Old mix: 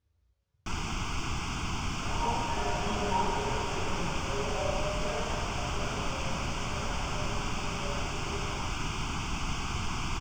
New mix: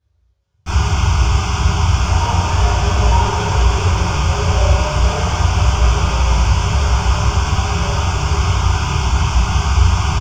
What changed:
speech: send +11.5 dB; first sound: send on; second sound +10.0 dB

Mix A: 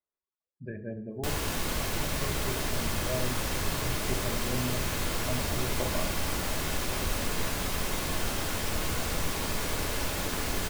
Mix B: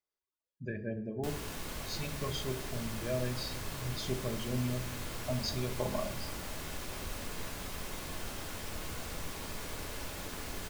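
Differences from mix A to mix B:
speech: remove low-pass 1.7 kHz 12 dB/octave; background -10.0 dB

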